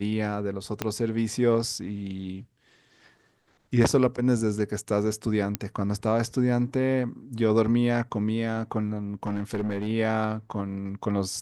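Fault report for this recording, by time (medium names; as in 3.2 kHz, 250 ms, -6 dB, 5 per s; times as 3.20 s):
0.82 s: pop -11 dBFS
5.55 s: pop -10 dBFS
9.23–9.87 s: clipped -23.5 dBFS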